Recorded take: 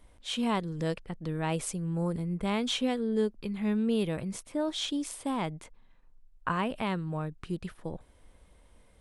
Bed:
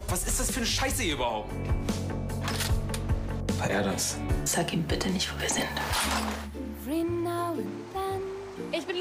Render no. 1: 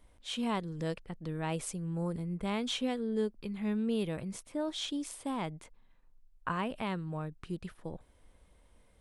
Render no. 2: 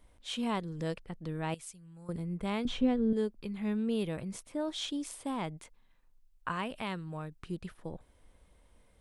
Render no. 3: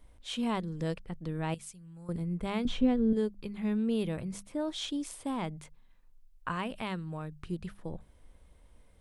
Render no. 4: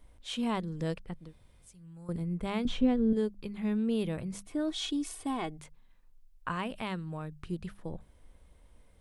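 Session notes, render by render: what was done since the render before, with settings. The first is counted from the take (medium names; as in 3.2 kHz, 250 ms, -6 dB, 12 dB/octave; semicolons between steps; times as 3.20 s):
trim -4 dB
1.54–2.09 s: amplifier tone stack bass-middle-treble 5-5-5; 2.65–3.13 s: RIAA curve playback; 5.57–7.43 s: tilt shelf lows -3 dB, about 1.5 kHz
bass shelf 180 Hz +6 dB; hum notches 50/100/150/200 Hz
1.22–1.73 s: room tone, crossfade 0.24 s; 4.46–5.59 s: comb 2.7 ms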